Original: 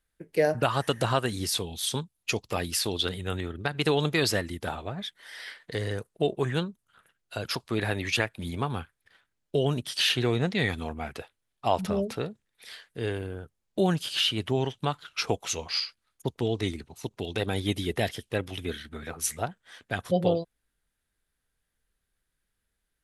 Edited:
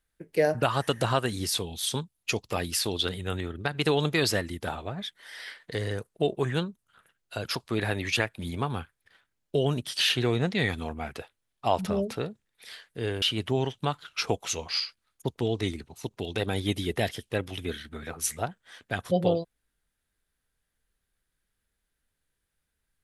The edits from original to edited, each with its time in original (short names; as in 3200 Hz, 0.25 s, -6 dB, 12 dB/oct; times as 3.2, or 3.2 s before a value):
13.22–14.22 cut